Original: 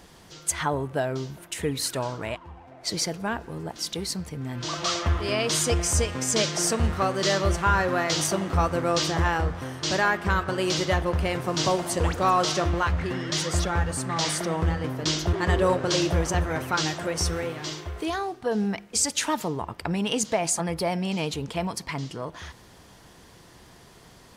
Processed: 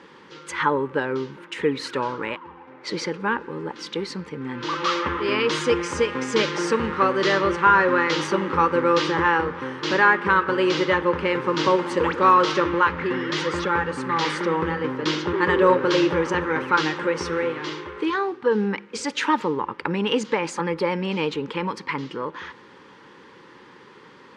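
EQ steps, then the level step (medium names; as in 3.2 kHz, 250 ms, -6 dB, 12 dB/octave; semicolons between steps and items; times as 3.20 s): band-pass 280–2400 Hz; Butterworth band-stop 680 Hz, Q 2.5; +8.0 dB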